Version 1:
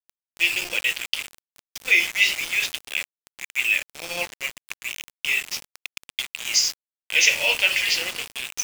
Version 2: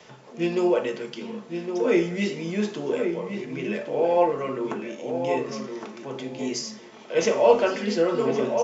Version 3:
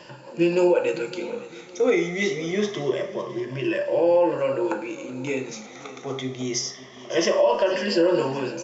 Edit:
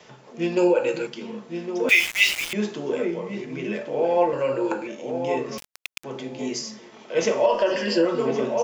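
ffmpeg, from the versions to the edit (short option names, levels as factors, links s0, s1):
-filter_complex "[2:a]asplit=3[s0][s1][s2];[0:a]asplit=2[s3][s4];[1:a]asplit=6[s5][s6][s7][s8][s9][s10];[s5]atrim=end=0.572[s11];[s0]atrim=start=0.568:end=1.072[s12];[s6]atrim=start=1.068:end=1.892[s13];[s3]atrim=start=1.888:end=2.532[s14];[s7]atrim=start=2.528:end=4.332[s15];[s1]atrim=start=4.328:end=4.872[s16];[s8]atrim=start=4.868:end=5.582[s17];[s4]atrim=start=5.578:end=6.042[s18];[s9]atrim=start=6.038:end=7.462[s19];[s2]atrim=start=7.458:end=8.052[s20];[s10]atrim=start=8.048[s21];[s11][s12]acrossfade=d=0.004:c1=hsin:c2=hsin[s22];[s22][s13]acrossfade=d=0.004:c1=hsin:c2=hsin[s23];[s23][s14]acrossfade=d=0.004:c1=hsin:c2=hsin[s24];[s24][s15]acrossfade=d=0.004:c1=hsin:c2=hsin[s25];[s25][s16]acrossfade=d=0.004:c1=hsin:c2=hsin[s26];[s26][s17]acrossfade=d=0.004:c1=hsin:c2=hsin[s27];[s27][s18]acrossfade=d=0.004:c1=hsin:c2=hsin[s28];[s28][s19]acrossfade=d=0.004:c1=hsin:c2=hsin[s29];[s29][s20]acrossfade=d=0.004:c1=hsin:c2=hsin[s30];[s30][s21]acrossfade=d=0.004:c1=hsin:c2=hsin"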